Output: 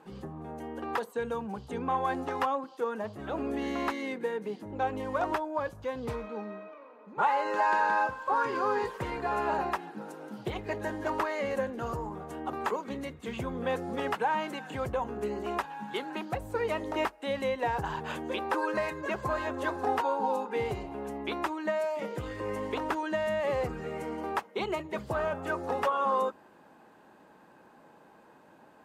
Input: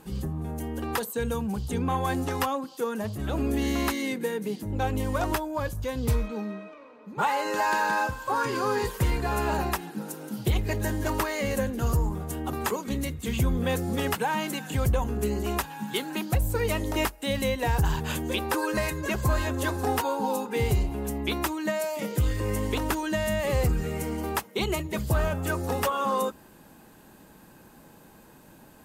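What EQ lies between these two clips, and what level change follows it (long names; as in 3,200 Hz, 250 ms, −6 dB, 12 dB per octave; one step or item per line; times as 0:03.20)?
resonant band-pass 850 Hz, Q 0.66
0.0 dB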